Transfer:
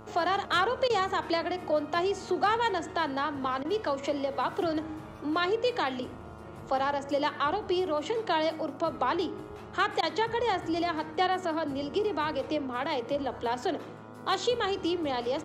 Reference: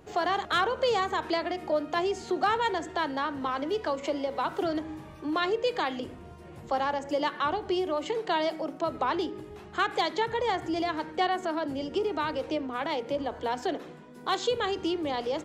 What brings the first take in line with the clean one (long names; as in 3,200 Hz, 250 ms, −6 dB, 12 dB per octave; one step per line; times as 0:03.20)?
hum removal 109.3 Hz, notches 13
repair the gap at 0:00.88/0:03.63/0:10.01, 17 ms